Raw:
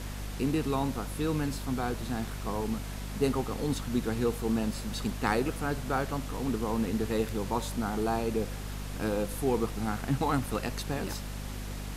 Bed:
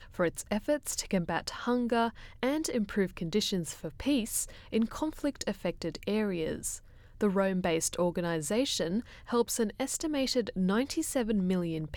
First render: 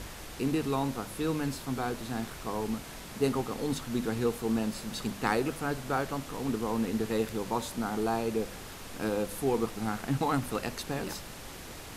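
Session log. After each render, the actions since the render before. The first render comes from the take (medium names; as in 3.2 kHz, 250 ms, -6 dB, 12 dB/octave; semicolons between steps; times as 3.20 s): hum notches 50/100/150/200/250 Hz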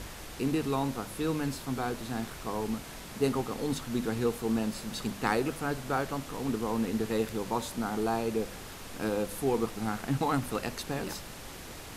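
no audible change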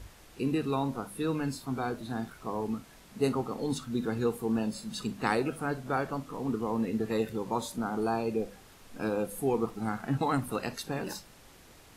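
noise print and reduce 11 dB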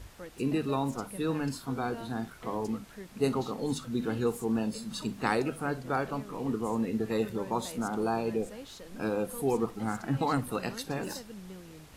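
add bed -16.5 dB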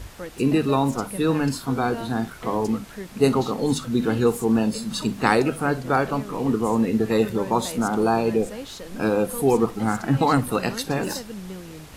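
trim +9.5 dB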